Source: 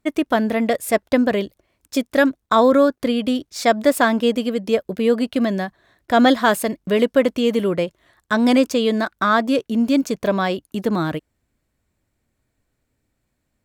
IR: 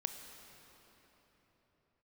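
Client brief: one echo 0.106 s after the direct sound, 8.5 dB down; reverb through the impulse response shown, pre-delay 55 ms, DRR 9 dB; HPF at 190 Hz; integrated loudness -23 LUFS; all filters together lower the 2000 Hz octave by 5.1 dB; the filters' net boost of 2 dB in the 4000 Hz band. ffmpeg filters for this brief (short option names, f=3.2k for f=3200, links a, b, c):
-filter_complex "[0:a]highpass=190,equalizer=f=2k:t=o:g=-8,equalizer=f=4k:t=o:g=5.5,aecho=1:1:106:0.376,asplit=2[a][b];[1:a]atrim=start_sample=2205,adelay=55[c];[b][c]afir=irnorm=-1:irlink=0,volume=-9dB[d];[a][d]amix=inputs=2:normalize=0,volume=-4dB"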